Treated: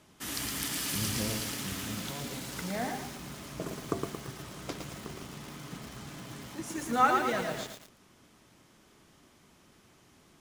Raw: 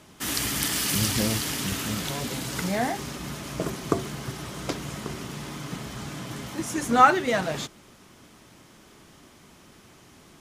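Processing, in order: lo-fi delay 0.113 s, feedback 55%, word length 6-bit, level -4 dB; gain -8.5 dB

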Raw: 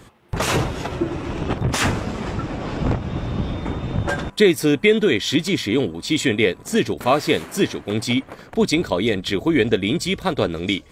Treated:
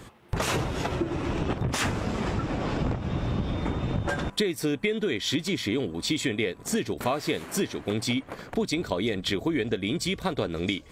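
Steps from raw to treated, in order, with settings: compressor 6:1, threshold -24 dBFS, peak gain reduction 14 dB

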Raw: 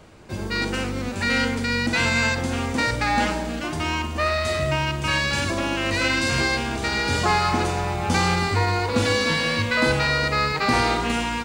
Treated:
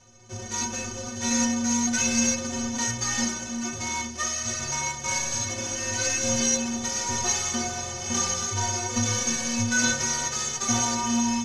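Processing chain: half-waves squared off; synth low-pass 6300 Hz, resonance Q 16; metallic resonator 110 Hz, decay 0.49 s, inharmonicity 0.03

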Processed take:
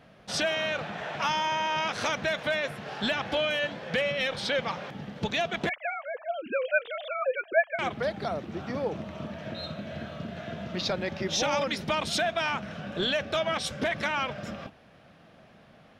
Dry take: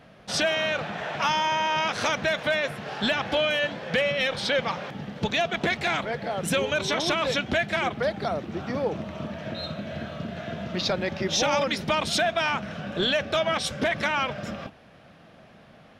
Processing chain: 5.69–7.79 sine-wave speech; gain -3.5 dB

